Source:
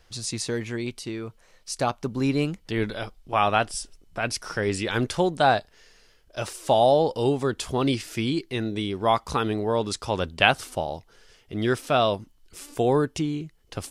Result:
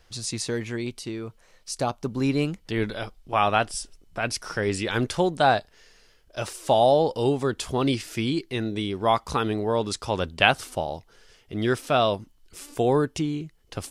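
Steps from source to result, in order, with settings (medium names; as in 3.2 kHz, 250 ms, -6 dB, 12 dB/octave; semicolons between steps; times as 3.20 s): 0.85–2.05 s: dynamic bell 1.9 kHz, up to -6 dB, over -42 dBFS, Q 0.84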